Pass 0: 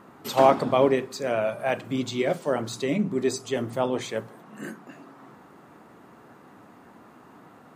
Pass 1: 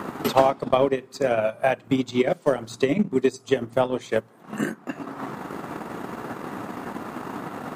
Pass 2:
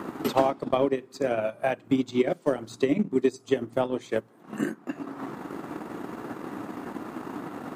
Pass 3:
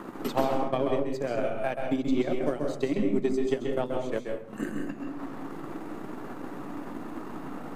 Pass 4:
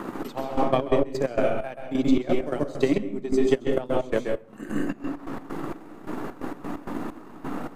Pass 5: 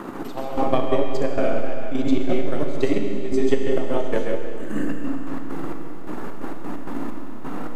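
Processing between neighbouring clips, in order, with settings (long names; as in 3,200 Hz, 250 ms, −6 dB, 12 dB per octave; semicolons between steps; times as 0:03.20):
transient designer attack +9 dB, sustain −11 dB; multiband upward and downward compressor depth 70%
parametric band 310 Hz +6.5 dB 0.65 octaves; level −5.5 dB
gain on one half-wave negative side −3 dB; convolution reverb RT60 0.55 s, pre-delay 132 ms, DRR 2.5 dB; level −3.5 dB
gate pattern "xx...xx.x.x." 131 BPM −12 dB; level +6.5 dB
four-comb reverb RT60 2.6 s, combs from 26 ms, DRR 3.5 dB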